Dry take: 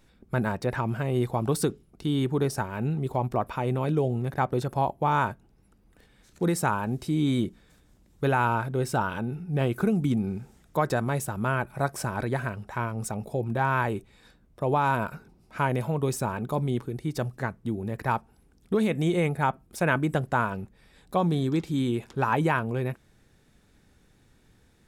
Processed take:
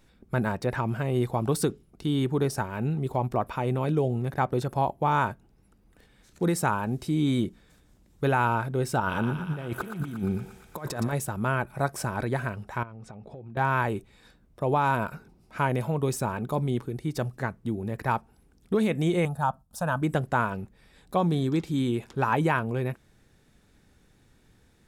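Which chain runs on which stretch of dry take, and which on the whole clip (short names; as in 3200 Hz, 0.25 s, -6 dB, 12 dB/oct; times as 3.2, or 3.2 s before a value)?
9–11.13 negative-ratio compressor -29 dBFS, ratio -0.5 + thinning echo 0.117 s, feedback 78%, high-pass 640 Hz, level -7 dB
12.83–13.57 LPF 3400 Hz + compressor, threshold -40 dBFS
19.25–20.02 gate -56 dBFS, range -7 dB + fixed phaser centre 900 Hz, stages 4
whole clip: dry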